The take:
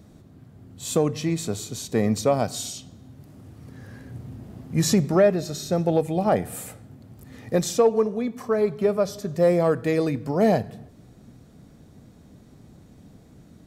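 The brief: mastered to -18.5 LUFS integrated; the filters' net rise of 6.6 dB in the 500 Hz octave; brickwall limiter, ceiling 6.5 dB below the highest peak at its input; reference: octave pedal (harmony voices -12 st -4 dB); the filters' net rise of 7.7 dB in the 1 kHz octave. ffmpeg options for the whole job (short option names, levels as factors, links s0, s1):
-filter_complex "[0:a]equalizer=f=500:t=o:g=5.5,equalizer=f=1000:t=o:g=8.5,alimiter=limit=0.398:level=0:latency=1,asplit=2[s0][s1];[s1]asetrate=22050,aresample=44100,atempo=2,volume=0.631[s2];[s0][s2]amix=inputs=2:normalize=0,volume=1.06"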